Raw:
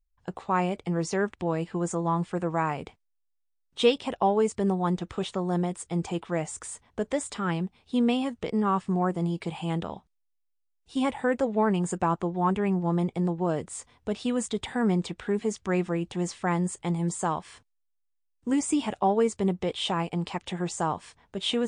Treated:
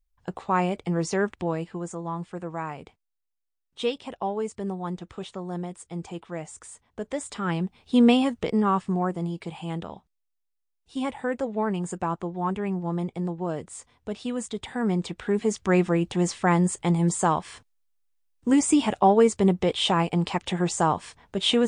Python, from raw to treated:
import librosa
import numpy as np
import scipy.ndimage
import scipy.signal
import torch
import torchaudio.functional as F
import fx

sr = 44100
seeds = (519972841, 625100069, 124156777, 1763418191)

y = fx.gain(x, sr, db=fx.line((1.39, 2.0), (1.89, -5.5), (6.85, -5.5), (8.07, 7.0), (9.36, -2.5), (14.62, -2.5), (15.7, 5.5)))